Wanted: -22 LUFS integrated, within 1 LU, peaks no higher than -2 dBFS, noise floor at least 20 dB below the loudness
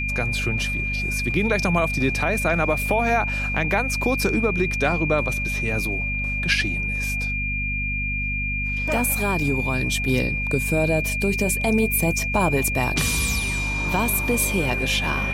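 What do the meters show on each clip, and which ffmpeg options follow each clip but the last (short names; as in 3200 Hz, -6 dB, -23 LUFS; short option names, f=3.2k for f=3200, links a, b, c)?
hum 50 Hz; harmonics up to 250 Hz; hum level -26 dBFS; steady tone 2400 Hz; tone level -25 dBFS; loudness -22.0 LUFS; peak -5.5 dBFS; loudness target -22.0 LUFS
-> -af "bandreject=f=50:t=h:w=6,bandreject=f=100:t=h:w=6,bandreject=f=150:t=h:w=6,bandreject=f=200:t=h:w=6,bandreject=f=250:t=h:w=6"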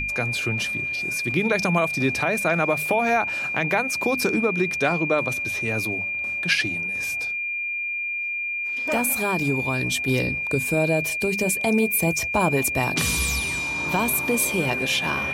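hum none; steady tone 2400 Hz; tone level -25 dBFS
-> -af "bandreject=f=2.4k:w=30"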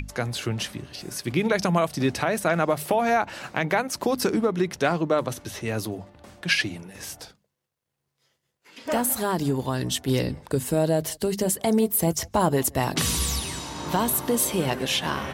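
steady tone none; loudness -25.0 LUFS; peak -7.5 dBFS; loudness target -22.0 LUFS
-> -af "volume=3dB"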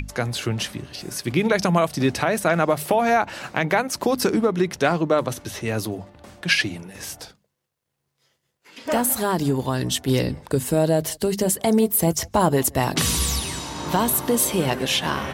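loudness -22.0 LUFS; peak -4.5 dBFS; noise floor -77 dBFS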